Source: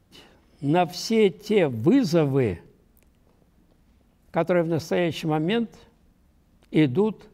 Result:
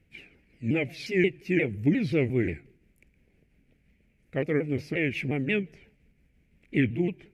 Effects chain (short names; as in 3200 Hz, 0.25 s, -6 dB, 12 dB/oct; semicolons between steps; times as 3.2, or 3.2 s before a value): repeated pitch sweeps -4.5 st, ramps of 0.177 s; EQ curve 450 Hz 0 dB, 1100 Hz -15 dB, 2300 Hz +13 dB, 3600 Hz -6 dB; gain -3.5 dB